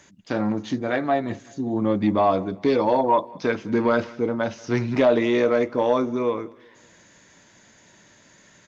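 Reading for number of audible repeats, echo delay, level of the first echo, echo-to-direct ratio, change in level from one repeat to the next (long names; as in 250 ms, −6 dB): 2, 190 ms, −24.0 dB, −23.0 dB, −7.5 dB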